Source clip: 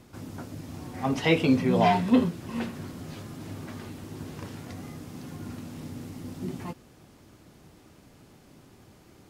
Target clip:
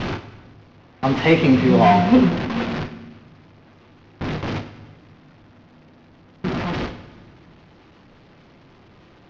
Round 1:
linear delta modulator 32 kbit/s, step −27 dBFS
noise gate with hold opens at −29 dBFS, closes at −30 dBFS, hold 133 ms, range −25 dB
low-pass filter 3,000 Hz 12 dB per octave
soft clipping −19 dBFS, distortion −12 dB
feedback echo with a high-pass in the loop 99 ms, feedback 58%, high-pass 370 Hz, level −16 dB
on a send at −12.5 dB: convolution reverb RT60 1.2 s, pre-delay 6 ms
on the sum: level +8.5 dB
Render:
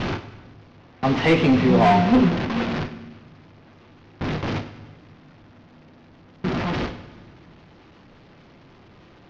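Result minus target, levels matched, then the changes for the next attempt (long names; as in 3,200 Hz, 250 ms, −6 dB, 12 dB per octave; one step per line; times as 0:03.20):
soft clipping: distortion +9 dB
change: soft clipping −12 dBFS, distortion −22 dB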